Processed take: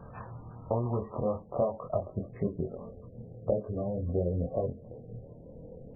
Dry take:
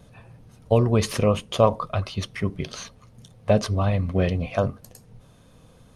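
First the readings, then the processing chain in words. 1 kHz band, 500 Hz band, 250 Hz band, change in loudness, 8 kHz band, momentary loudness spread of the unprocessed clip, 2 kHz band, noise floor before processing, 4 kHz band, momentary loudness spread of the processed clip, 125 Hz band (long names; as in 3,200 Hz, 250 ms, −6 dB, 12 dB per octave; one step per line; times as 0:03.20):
−11.0 dB, −7.5 dB, −9.0 dB, −9.5 dB, below −40 dB, 13 LU, below −25 dB, −53 dBFS, below −40 dB, 16 LU, −10.5 dB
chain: loose part that buzzes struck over −27 dBFS, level −25 dBFS
downward compressor 12 to 1, threshold −32 dBFS, peak gain reduction 21.5 dB
low-pass filter sweep 1,200 Hz → 500 Hz, 0:00.36–0:02.58
parametric band 5,100 Hz −4 dB 0.44 octaves
chorus effect 0.67 Hz, depth 3 ms
level +6.5 dB
MP3 8 kbit/s 16,000 Hz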